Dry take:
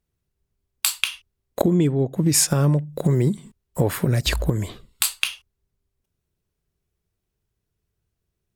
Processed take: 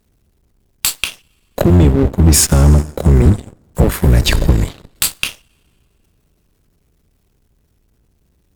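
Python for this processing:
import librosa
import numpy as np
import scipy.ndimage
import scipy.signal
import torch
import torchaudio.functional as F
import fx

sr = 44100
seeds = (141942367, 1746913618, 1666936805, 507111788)

y = fx.octave_divider(x, sr, octaves=1, level_db=3.0)
y = fx.power_curve(y, sr, exponent=0.5)
y = fx.rev_plate(y, sr, seeds[0], rt60_s=4.1, hf_ratio=0.55, predelay_ms=0, drr_db=17.0)
y = fx.cheby_harmonics(y, sr, harmonics=(4, 7), levels_db=(-21, -16), full_scale_db=-2.0)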